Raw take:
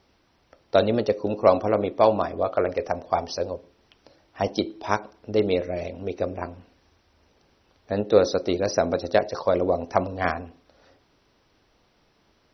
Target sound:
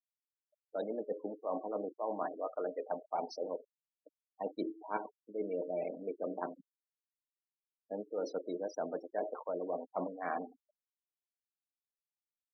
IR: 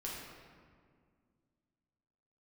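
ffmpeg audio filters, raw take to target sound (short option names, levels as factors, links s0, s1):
-af "highpass=f=210:w=0.5412,highpass=f=210:w=1.3066,areverse,acompressor=threshold=0.0316:ratio=16,areverse,highshelf=f=2600:g=-5,aecho=1:1:6.5:0.34,adynamicequalizer=threshold=0.00282:dfrequency=870:dqfactor=2.6:tfrequency=870:tqfactor=2.6:attack=5:release=100:ratio=0.375:range=2:mode=boostabove:tftype=bell,afftfilt=real='re*gte(hypot(re,im),0.0178)':imag='im*gte(hypot(re,im),0.0178)':win_size=1024:overlap=0.75,volume=0.631"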